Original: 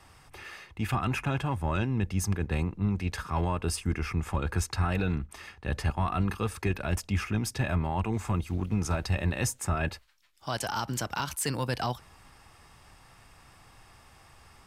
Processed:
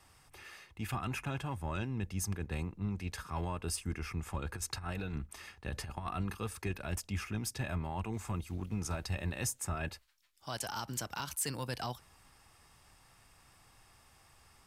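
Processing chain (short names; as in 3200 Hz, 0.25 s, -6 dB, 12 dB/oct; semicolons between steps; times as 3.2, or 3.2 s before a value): high shelf 5000 Hz +7.5 dB; 4.54–6.11 negative-ratio compressor -29 dBFS, ratio -0.5; gain -8.5 dB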